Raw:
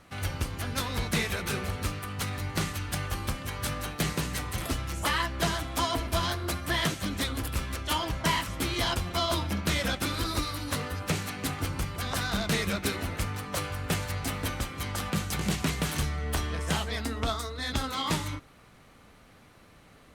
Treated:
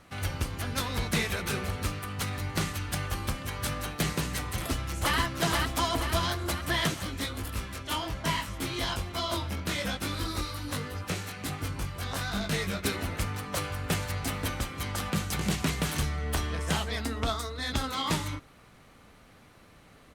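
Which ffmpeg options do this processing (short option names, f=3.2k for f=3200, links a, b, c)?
-filter_complex "[0:a]asplit=2[a][b];[b]afade=t=in:st=4.53:d=0.01,afade=t=out:st=5.17:d=0.01,aecho=0:1:480|960|1440|1920|2400|2880|3360|3840:0.749894|0.412442|0.226843|0.124764|0.06862|0.037741|0.0207576|0.0114167[c];[a][c]amix=inputs=2:normalize=0,asplit=3[d][e][f];[d]afade=t=out:st=7.02:d=0.02[g];[e]flanger=delay=19.5:depth=3:speed=1.2,afade=t=in:st=7.02:d=0.02,afade=t=out:st=12.83:d=0.02[h];[f]afade=t=in:st=12.83:d=0.02[i];[g][h][i]amix=inputs=3:normalize=0"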